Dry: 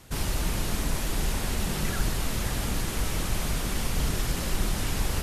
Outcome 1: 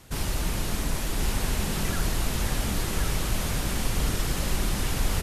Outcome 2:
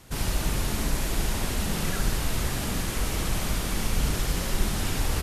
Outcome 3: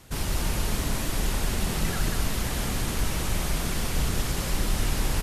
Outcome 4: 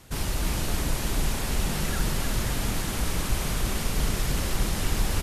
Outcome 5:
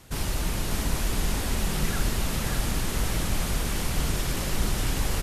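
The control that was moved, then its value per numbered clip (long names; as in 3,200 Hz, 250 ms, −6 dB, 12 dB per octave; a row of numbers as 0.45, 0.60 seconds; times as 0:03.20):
repeating echo, delay time: 1,077, 70, 189, 312, 590 milliseconds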